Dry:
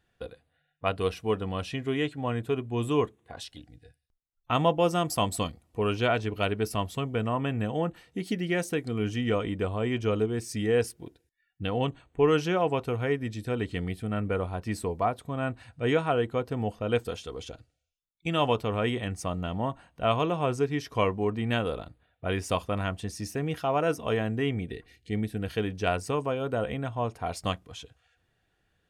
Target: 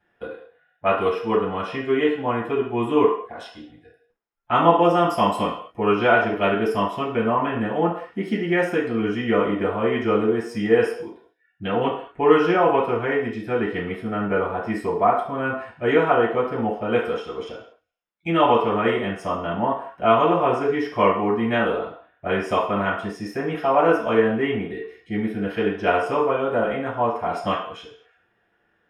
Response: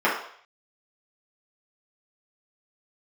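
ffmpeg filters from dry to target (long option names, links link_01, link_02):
-filter_complex "[1:a]atrim=start_sample=2205,afade=type=out:start_time=0.3:duration=0.01,atrim=end_sample=13671[link_01];[0:a][link_01]afir=irnorm=-1:irlink=0,volume=-9.5dB"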